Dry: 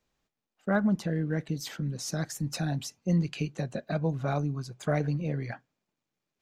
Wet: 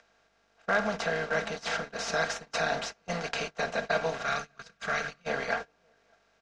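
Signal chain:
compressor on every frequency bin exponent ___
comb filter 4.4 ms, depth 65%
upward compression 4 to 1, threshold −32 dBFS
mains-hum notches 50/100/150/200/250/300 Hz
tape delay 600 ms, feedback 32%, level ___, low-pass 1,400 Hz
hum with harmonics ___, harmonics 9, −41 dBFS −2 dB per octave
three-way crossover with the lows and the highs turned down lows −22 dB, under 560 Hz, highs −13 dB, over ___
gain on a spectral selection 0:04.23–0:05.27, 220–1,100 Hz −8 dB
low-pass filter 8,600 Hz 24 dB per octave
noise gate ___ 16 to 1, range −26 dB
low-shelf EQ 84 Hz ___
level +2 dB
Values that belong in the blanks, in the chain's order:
0.4, −9 dB, 50 Hz, 5,100 Hz, −35 dBFS, +11.5 dB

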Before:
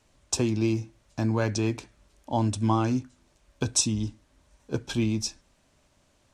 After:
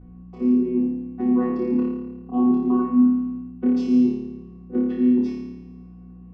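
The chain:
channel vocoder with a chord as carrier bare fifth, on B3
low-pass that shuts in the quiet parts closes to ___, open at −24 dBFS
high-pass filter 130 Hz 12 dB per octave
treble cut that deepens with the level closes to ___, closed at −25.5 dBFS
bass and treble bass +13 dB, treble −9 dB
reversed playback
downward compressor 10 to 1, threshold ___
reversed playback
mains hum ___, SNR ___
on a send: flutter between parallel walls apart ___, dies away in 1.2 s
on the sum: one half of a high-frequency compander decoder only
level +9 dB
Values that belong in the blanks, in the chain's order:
1,600 Hz, 1,600 Hz, −30 dBFS, 60 Hz, 17 dB, 4.8 metres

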